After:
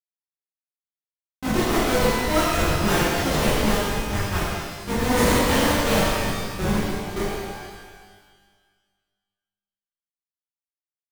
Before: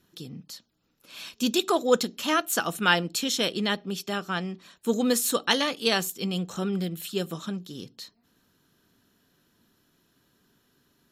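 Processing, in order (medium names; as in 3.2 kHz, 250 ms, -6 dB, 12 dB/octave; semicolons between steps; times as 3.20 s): level-controlled noise filter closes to 970 Hz, open at -20.5 dBFS; Schmitt trigger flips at -22.5 dBFS; pitch-shifted reverb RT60 1.6 s, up +12 st, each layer -8 dB, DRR -11.5 dB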